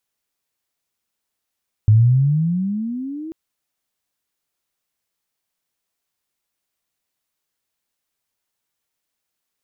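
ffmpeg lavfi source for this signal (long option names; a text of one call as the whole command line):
ffmpeg -f lavfi -i "aevalsrc='pow(10,(-7.5-20.5*t/1.44)/20)*sin(2*PI*104*1.44/(20*log(2)/12)*(exp(20*log(2)/12*t/1.44)-1))':duration=1.44:sample_rate=44100" out.wav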